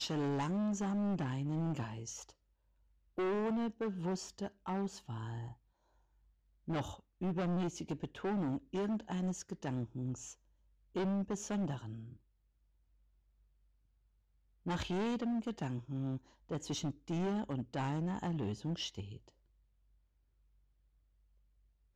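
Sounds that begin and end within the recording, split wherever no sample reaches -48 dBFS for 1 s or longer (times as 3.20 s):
6.68–12.13 s
14.66–19.29 s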